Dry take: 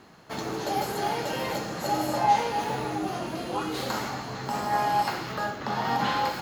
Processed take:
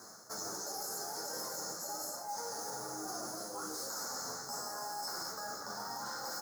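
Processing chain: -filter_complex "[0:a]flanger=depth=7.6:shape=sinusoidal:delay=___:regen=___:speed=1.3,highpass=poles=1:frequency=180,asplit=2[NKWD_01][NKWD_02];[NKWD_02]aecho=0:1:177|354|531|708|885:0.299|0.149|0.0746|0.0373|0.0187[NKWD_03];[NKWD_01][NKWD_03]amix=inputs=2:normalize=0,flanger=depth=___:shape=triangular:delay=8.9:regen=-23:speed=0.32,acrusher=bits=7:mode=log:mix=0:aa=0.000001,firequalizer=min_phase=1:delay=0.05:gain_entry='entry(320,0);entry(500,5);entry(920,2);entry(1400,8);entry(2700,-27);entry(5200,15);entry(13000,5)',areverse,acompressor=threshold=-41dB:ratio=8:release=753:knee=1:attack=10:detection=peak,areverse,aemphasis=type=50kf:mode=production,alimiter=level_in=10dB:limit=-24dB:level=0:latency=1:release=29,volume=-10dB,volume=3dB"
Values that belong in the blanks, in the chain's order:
1.9, 88, 3.9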